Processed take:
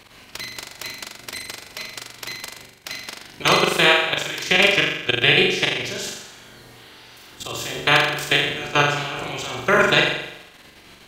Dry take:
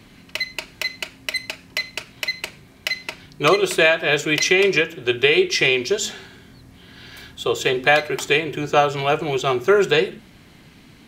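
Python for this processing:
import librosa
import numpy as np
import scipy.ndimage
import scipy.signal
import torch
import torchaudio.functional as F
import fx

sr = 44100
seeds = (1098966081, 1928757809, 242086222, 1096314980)

y = fx.spec_clip(x, sr, under_db=17)
y = fx.level_steps(y, sr, step_db=16)
y = fx.room_flutter(y, sr, wall_m=7.2, rt60_s=0.83)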